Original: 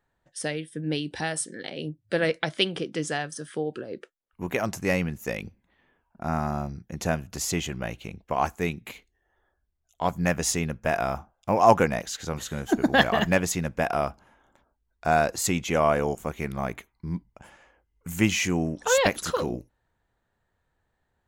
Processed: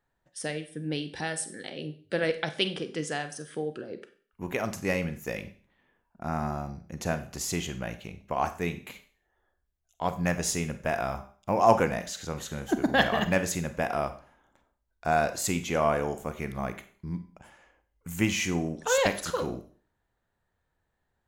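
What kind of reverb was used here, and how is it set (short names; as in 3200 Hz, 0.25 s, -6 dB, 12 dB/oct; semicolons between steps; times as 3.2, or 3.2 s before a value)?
Schroeder reverb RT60 0.44 s, combs from 31 ms, DRR 10 dB; gain -3.5 dB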